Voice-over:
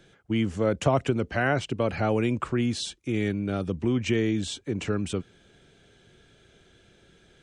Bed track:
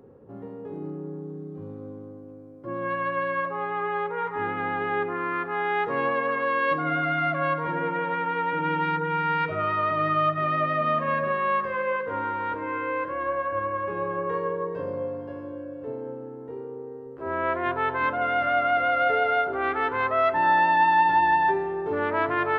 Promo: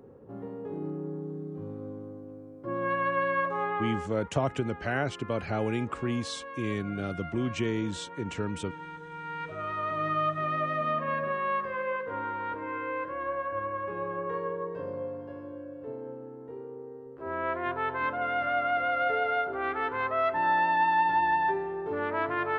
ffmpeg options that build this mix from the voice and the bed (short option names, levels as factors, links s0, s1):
-filter_complex "[0:a]adelay=3500,volume=0.562[s0];[1:a]volume=3.76,afade=t=out:st=3.67:d=0.45:silence=0.149624,afade=t=in:st=9.1:d=1.03:silence=0.251189[s1];[s0][s1]amix=inputs=2:normalize=0"